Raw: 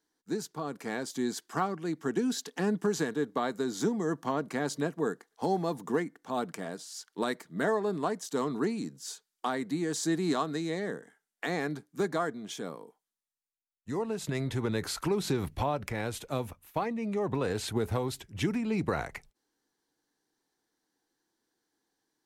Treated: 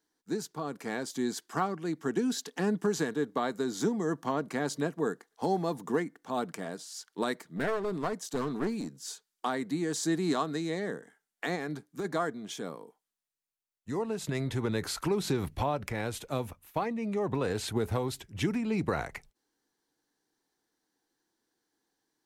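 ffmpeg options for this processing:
-filter_complex "[0:a]asettb=1/sr,asplit=3[a][b][c];[a]atrim=end=7.484[d];[b]atrim=start=7.48:end=9,asetpts=PTS-STARTPTS,afade=t=in:d=0.004:c=qsin,afade=t=out:st=1.516:d=0.004:c=qsin,aeval=exprs='clip(val(0),-1,0.0237)':c=same[e];[c]atrim=start=8.996[f];[d][e]acrossfade=d=0.004:c1=hsin:c2=qsin[g];[g][f]acrossfade=d=0.004:c1=qsin:c2=hsin,asplit=3[h][i][j];[h]afade=t=out:st=11.55:d=0.02[k];[i]acompressor=threshold=-30dB:ratio=6:attack=3.2:release=140:knee=1:detection=peak,afade=t=in:st=11.55:d=0.02,afade=t=out:st=12.04:d=0.02[l];[j]afade=t=in:st=12.04:d=0.02[m];[k][l][m]amix=inputs=3:normalize=0"

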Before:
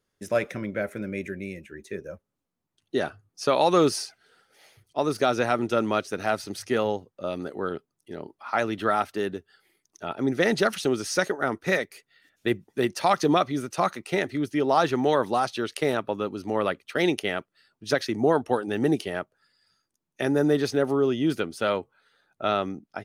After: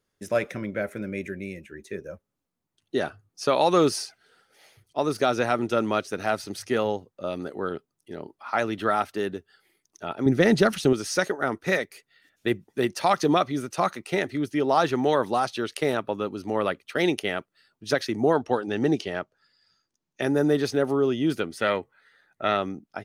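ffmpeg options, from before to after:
-filter_complex "[0:a]asettb=1/sr,asplit=3[a][b][c];[a]atrim=end=10.264[d];[b]atrim=start=10.26:end=10.93,asetpts=PTS-STARTPTS,afade=t=in:d=0.004:c=qsin,afade=t=out:st=0.666:d=0.004:c=qsin,lowshelf=f=250:g=11.5[e];[c]atrim=start=10.926[f];[d][e]acrossfade=d=0.004:c1=hsin:c2=qsin[g];[g][f]acrossfade=d=0.004:c1=qsin:c2=hsin,asettb=1/sr,asplit=3[h][i][j];[h]atrim=end=18.334[k];[i]atrim=start=18.33:end=20.22,asetpts=PTS-STARTPTS,afade=t=in:d=0.004:c=qsin,afade=t=out:st=1.886:d=0.004:c=qsin,highshelf=f=8k:t=q:w=1.5:g=-9.5[l];[j]atrim=start=20.216[m];[k][l]acrossfade=d=0.004:c1=hsin:c2=qsin[n];[n][m]acrossfade=d=0.004:c1=qsin:c2=hsin,asettb=1/sr,asplit=3[o][p][q];[o]atrim=end=21.504[r];[p]atrim=start=21.5:end=22.57,asetpts=PTS-STARTPTS,afade=t=in:d=0.004:c=qsin,afade=t=out:st=1.066:d=0.004:c=qsin,equalizer=f=1.9k:t=o:w=0.31:g=14[s];[q]atrim=start=22.566[t];[r][s]acrossfade=d=0.004:c1=hsin:c2=qsin[u];[u][t]acrossfade=d=0.004:c1=qsin:c2=hsin"

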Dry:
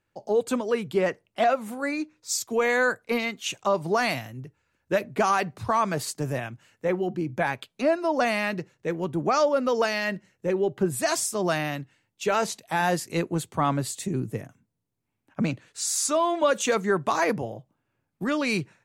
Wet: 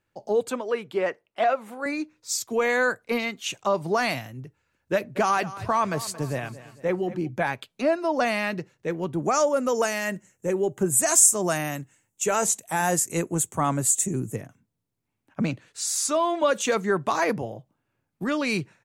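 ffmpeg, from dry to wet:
-filter_complex "[0:a]asettb=1/sr,asplit=3[a][b][c];[a]atrim=end=0.504[d];[b]atrim=start=0.5:end=1.86,asetpts=PTS-STARTPTS,afade=t=in:d=0.004:c=qsin,afade=t=out:st=1.356:d=0.004:c=qsin,bass=f=250:g=-13,treble=f=4k:g=-8[e];[c]atrim=start=1.856[f];[d][e]acrossfade=d=0.004:c1=hsin:c2=qsin[g];[g][f]acrossfade=d=0.004:c1=qsin:c2=hsin,asplit=3[h][i][j];[h]afade=t=out:st=5.15:d=0.02[k];[i]aecho=1:1:226|452|678|904:0.158|0.0697|0.0307|0.0135,afade=t=in:st=5.15:d=0.02,afade=t=out:st=7.27:d=0.02[l];[j]afade=t=in:st=7.27:d=0.02[m];[k][l][m]amix=inputs=3:normalize=0,asettb=1/sr,asplit=3[n][o][p];[n]atrim=end=9.224[q];[o]atrim=start=9.22:end=14.36,asetpts=PTS-STARTPTS,afade=t=in:d=0.004:c=qsin,afade=t=out:st=5.136:d=0.004:c=qsin,highshelf=f=5.7k:t=q:w=3:g=8.5[r];[p]atrim=start=14.356[s];[q][r]acrossfade=d=0.004:c1=hsin:c2=qsin[t];[t][s]acrossfade=d=0.004:c1=qsin:c2=hsin"

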